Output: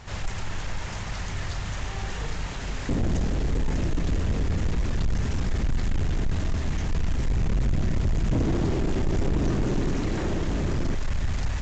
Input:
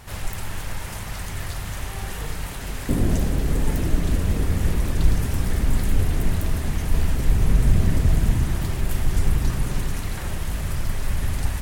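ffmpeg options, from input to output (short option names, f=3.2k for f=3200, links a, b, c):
-filter_complex "[0:a]asettb=1/sr,asplit=3[a][b][c];[a]atrim=end=8.324[d];[b]atrim=start=8.32:end=10.95,asetpts=PTS-STARTPTS,afade=t=in:d=0.004:c=qsin,afade=t=out:st=2.626:d=0.004:c=qsin,equalizer=f=320:t=o:w=1.6:g=14.5[e];[c]atrim=start=10.946[f];[d][e]acrossfade=d=0.004:c1=hsin:c2=qsin[g];[g][f]acrossfade=d=0.004:c1=qsin:c2=hsin,asoftclip=type=tanh:threshold=-19dB" -ar 16000 -c:a pcm_mulaw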